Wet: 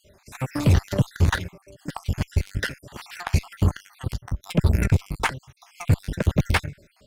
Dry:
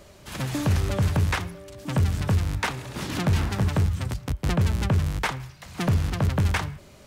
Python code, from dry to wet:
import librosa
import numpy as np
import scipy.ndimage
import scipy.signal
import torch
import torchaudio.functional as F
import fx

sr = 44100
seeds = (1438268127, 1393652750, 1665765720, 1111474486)

y = fx.spec_dropout(x, sr, seeds[0], share_pct=58)
y = fx.cheby_harmonics(y, sr, harmonics=(2, 7), levels_db=(-15, -21), full_scale_db=-14.0)
y = y * 10.0 ** (5.0 / 20.0)